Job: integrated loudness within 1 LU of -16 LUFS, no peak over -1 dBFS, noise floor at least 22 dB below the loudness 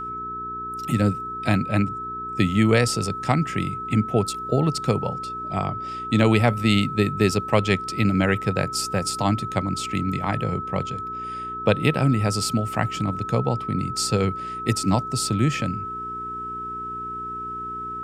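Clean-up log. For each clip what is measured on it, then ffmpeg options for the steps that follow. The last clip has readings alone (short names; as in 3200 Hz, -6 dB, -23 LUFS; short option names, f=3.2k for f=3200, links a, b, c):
hum 60 Hz; harmonics up to 420 Hz; hum level -40 dBFS; steady tone 1300 Hz; tone level -29 dBFS; loudness -23.5 LUFS; peak -3.0 dBFS; loudness target -16.0 LUFS
-> -af "bandreject=f=60:t=h:w=4,bandreject=f=120:t=h:w=4,bandreject=f=180:t=h:w=4,bandreject=f=240:t=h:w=4,bandreject=f=300:t=h:w=4,bandreject=f=360:t=h:w=4,bandreject=f=420:t=h:w=4"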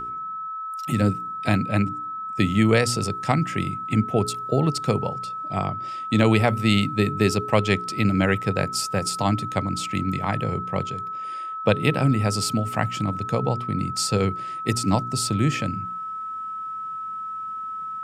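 hum none; steady tone 1300 Hz; tone level -29 dBFS
-> -af "bandreject=f=1.3k:w=30"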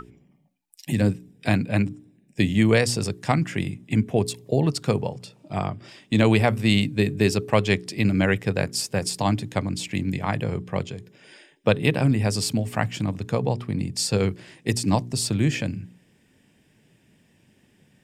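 steady tone none; loudness -24.0 LUFS; peak -4.0 dBFS; loudness target -16.0 LUFS
-> -af "volume=8dB,alimiter=limit=-1dB:level=0:latency=1"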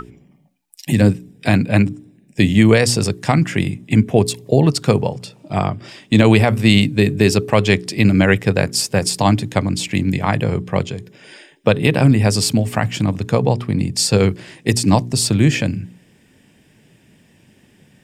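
loudness -16.5 LUFS; peak -1.0 dBFS; noise floor -54 dBFS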